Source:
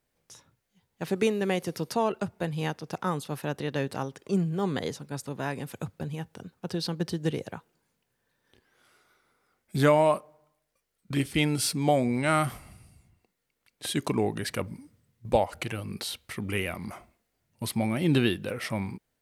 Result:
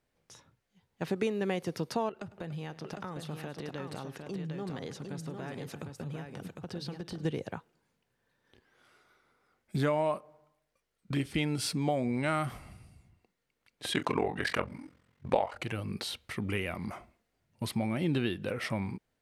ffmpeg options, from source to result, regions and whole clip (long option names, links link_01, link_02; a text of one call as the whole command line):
ffmpeg -i in.wav -filter_complex "[0:a]asettb=1/sr,asplit=3[link_01][link_02][link_03];[link_01]atrim=end=2.094[link_04];[link_02]atrim=start=2.09:end=7.25,asetpts=PTS-STARTPTS,afade=type=in:duration=0.004:curve=qsin,afade=type=out:start_time=5.156:duration=0.004:curve=qsin,bandreject=frequency=1000:width=18,acompressor=threshold=-36dB:ratio=5:attack=3.2:release=140:knee=1:detection=peak,aecho=1:1:103|289|755:0.1|0.158|0.562,atrim=end_sample=227556[link_05];[link_03]atrim=start=7.246[link_06];[link_04][link_05]acrossfade=duration=0.004:curve1=hsin:curve2=qsin[link_07];[link_07][link_06]acrossfade=duration=0.004:curve1=qsin:curve2=hsin,asettb=1/sr,asplit=3[link_08][link_09][link_10];[link_08]atrim=end=13.924[link_11];[link_09]atrim=start=13.92:end=15.58,asetpts=PTS-STARTPTS,afade=type=in:duration=0.004:curve=qsin,afade=type=out:start_time=1.656:duration=0.004:curve=qsin,asplit=2[link_12][link_13];[link_13]adelay=31,volume=-10dB[link_14];[link_12][link_14]amix=inputs=2:normalize=0,atrim=end_sample=73206,aeval=exprs='val(0)*sin(2*PI*22*n/s)':channel_layout=same,equalizer=frequency=1400:width=0.32:gain=13[link_15];[link_10]atrim=start=15.576[link_16];[link_11][link_15]acrossfade=duration=0.004:curve1=hsin:curve2=qsin[link_17];[link_17][link_16]acrossfade=duration=0.004:curve1=qsin:curve2=hsin,highshelf=frequency=7500:gain=-11,acompressor=threshold=-29dB:ratio=2.5" out.wav